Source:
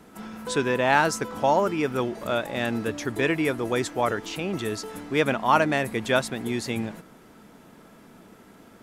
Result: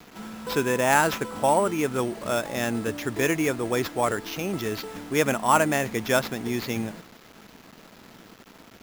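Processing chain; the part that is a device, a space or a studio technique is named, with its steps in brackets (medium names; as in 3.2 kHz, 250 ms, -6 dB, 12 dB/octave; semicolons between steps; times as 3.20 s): early 8-bit sampler (sample-rate reducer 8.9 kHz, jitter 0%; bit crusher 8-bit)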